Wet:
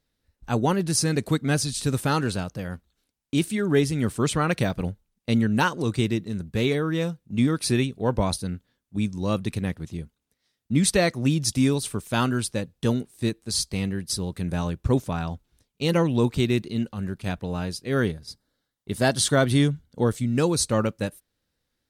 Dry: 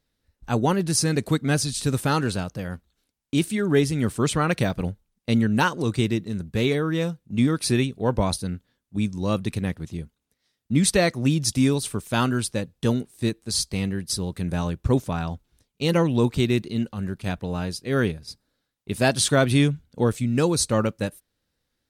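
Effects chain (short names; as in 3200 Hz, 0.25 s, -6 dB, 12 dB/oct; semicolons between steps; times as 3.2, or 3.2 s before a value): 17.99–20.38 notch 2500 Hz, Q 6.6; gain -1 dB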